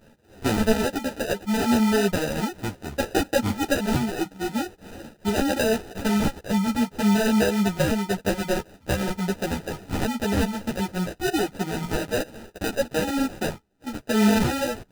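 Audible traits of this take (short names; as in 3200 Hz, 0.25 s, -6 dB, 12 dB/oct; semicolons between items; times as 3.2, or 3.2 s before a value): aliases and images of a low sample rate 1100 Hz, jitter 0%; a shimmering, thickened sound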